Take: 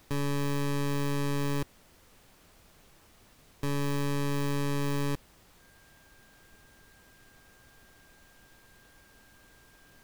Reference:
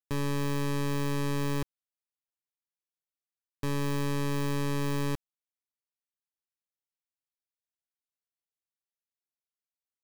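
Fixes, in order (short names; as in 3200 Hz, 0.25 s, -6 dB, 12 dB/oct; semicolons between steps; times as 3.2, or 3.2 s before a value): notch 1600 Hz, Q 30; noise print and reduce 30 dB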